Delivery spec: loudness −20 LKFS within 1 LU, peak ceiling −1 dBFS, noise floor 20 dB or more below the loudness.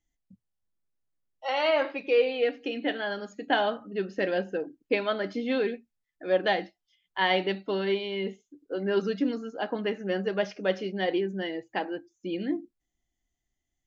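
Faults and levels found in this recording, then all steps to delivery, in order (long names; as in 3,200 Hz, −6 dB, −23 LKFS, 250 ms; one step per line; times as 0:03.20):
integrated loudness −29.0 LKFS; sample peak −11.0 dBFS; target loudness −20.0 LKFS
→ level +9 dB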